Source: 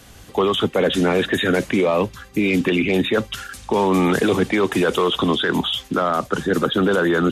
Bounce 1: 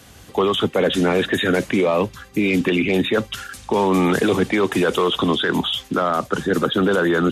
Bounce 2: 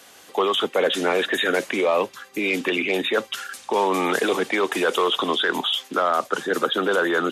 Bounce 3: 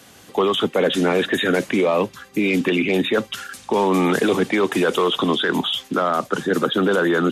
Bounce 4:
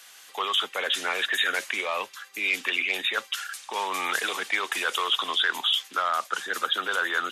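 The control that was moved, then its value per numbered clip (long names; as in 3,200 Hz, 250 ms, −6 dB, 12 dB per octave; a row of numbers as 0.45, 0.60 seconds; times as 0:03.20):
high-pass filter, corner frequency: 52, 430, 170, 1,300 Hertz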